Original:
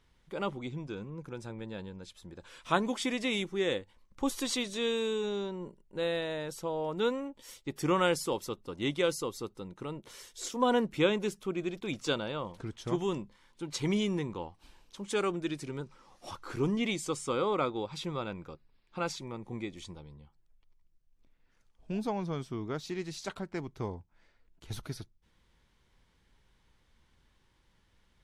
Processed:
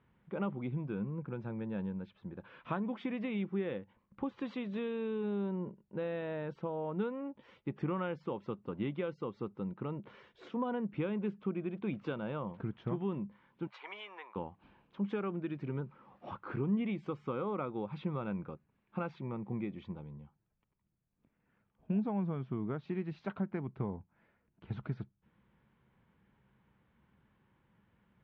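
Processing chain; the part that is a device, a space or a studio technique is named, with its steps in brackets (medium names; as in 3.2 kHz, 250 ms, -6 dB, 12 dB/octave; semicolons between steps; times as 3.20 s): 13.67–14.36 s: high-pass 740 Hz 24 dB/octave; bass amplifier (compression 4:1, threshold -35 dBFS, peak gain reduction 12.5 dB; cabinet simulation 85–2400 Hz, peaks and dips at 130 Hz +6 dB, 200 Hz +9 dB, 2 kHz -4 dB)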